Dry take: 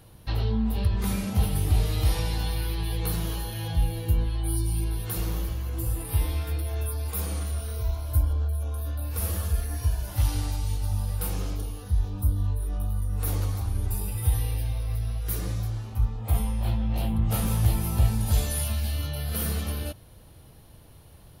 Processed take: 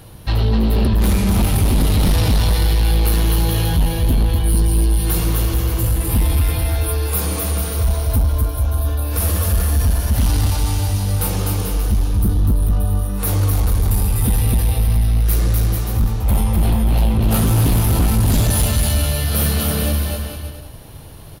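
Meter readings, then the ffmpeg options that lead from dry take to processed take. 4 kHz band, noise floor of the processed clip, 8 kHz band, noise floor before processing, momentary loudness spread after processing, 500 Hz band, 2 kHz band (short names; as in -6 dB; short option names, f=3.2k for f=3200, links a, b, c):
+11.5 dB, -33 dBFS, +11.5 dB, -50 dBFS, 4 LU, +12.0 dB, +11.5 dB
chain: -af "aecho=1:1:250|437.5|578.1|683.6|762.7:0.631|0.398|0.251|0.158|0.1,aeval=exprs='0.398*sin(PI/2*3.16*val(0)/0.398)':c=same,volume=-2.5dB"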